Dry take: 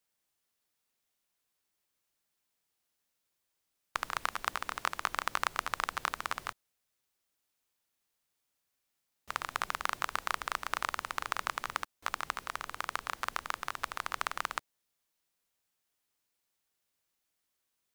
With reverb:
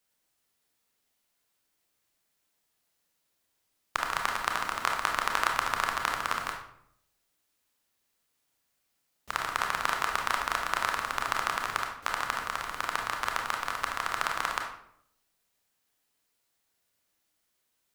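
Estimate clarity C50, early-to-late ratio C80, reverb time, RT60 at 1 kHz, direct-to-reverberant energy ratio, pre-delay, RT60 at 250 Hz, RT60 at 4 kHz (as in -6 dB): 5.0 dB, 8.5 dB, 0.70 s, 0.65 s, 1.5 dB, 25 ms, 0.85 s, 0.45 s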